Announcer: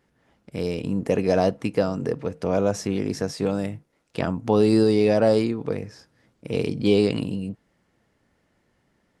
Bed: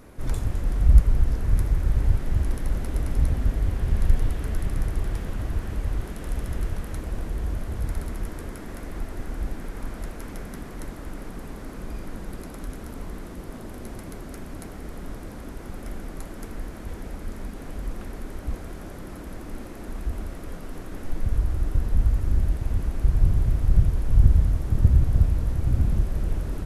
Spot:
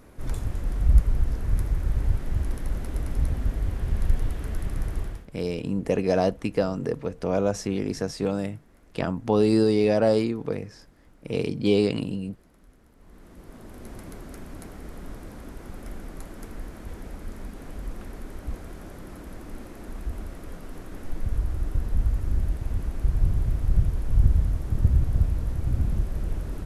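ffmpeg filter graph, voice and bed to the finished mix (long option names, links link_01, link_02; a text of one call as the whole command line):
ffmpeg -i stem1.wav -i stem2.wav -filter_complex "[0:a]adelay=4800,volume=-2dB[link_01];[1:a]volume=15dB,afade=type=out:start_time=5:duration=0.27:silence=0.125893,afade=type=in:start_time=12.97:duration=1.05:silence=0.125893[link_02];[link_01][link_02]amix=inputs=2:normalize=0" out.wav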